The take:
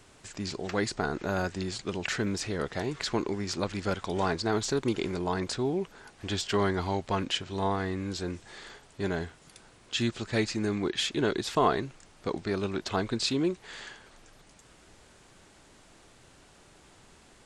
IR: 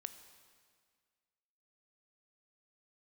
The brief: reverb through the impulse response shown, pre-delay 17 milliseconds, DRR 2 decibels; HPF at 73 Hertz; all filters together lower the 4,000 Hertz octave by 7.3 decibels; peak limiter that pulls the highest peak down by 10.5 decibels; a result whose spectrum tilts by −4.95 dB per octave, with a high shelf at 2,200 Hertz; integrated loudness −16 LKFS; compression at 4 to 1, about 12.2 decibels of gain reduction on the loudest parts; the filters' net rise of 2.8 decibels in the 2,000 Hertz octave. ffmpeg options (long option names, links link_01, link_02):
-filter_complex "[0:a]highpass=73,equalizer=frequency=2000:width_type=o:gain=8.5,highshelf=frequency=2200:gain=-6.5,equalizer=frequency=4000:width_type=o:gain=-6.5,acompressor=threshold=-34dB:ratio=4,alimiter=level_in=4.5dB:limit=-24dB:level=0:latency=1,volume=-4.5dB,asplit=2[link_01][link_02];[1:a]atrim=start_sample=2205,adelay=17[link_03];[link_02][link_03]afir=irnorm=-1:irlink=0,volume=2dB[link_04];[link_01][link_04]amix=inputs=2:normalize=0,volume=23dB"